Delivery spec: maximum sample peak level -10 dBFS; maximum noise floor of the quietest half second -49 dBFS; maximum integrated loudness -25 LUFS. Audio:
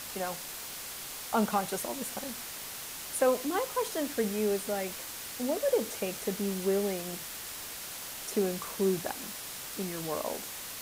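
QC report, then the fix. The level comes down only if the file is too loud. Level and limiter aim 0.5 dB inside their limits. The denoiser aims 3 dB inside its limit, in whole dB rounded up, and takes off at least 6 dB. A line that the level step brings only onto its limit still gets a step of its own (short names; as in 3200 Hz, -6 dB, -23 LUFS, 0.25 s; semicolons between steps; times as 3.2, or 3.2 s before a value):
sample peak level -15.5 dBFS: OK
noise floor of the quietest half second -41 dBFS: fail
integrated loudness -33.0 LUFS: OK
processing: denoiser 11 dB, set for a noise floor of -41 dBFS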